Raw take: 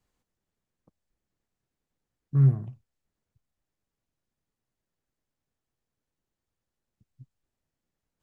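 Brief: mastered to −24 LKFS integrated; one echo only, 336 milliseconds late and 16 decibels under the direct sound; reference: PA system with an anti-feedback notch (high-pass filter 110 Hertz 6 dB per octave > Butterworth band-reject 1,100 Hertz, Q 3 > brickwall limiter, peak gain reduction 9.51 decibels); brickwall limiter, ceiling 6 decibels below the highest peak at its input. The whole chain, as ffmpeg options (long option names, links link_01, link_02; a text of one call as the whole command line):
ffmpeg -i in.wav -af "alimiter=limit=-17.5dB:level=0:latency=1,highpass=frequency=110:poles=1,asuperstop=centerf=1100:order=8:qfactor=3,aecho=1:1:336:0.158,volume=15dB,alimiter=limit=-13.5dB:level=0:latency=1" out.wav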